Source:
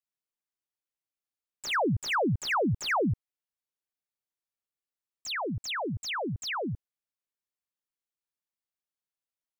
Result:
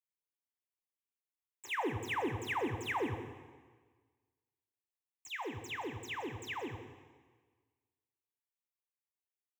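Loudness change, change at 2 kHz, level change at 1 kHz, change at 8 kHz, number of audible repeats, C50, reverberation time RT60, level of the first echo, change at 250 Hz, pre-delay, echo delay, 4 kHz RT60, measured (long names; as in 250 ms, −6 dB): −8.5 dB, −7.5 dB, −7.5 dB, −11.0 dB, 1, 7.0 dB, 1.5 s, −12.5 dB, −9.5 dB, 5 ms, 174 ms, 1.4 s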